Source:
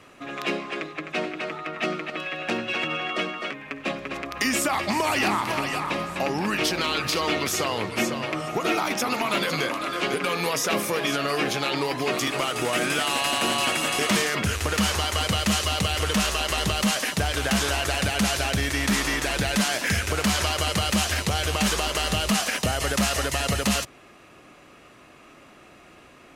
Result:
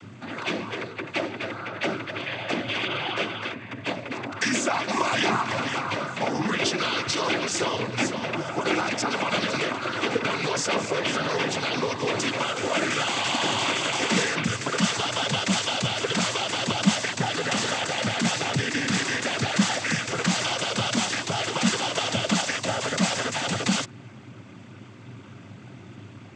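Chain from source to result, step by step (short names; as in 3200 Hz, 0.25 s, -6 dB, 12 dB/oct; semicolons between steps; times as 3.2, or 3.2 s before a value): hum 60 Hz, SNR 13 dB; noise vocoder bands 16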